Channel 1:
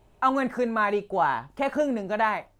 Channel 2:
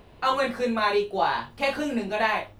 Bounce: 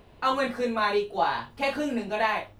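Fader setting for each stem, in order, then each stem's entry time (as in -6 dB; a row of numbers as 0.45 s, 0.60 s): -10.0 dB, -2.5 dB; 0.00 s, 0.00 s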